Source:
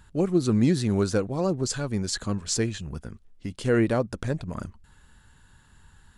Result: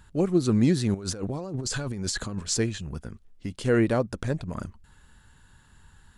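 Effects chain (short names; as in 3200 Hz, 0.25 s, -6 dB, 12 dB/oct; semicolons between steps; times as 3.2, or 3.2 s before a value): 0.94–2.43 negative-ratio compressor -32 dBFS, ratio -1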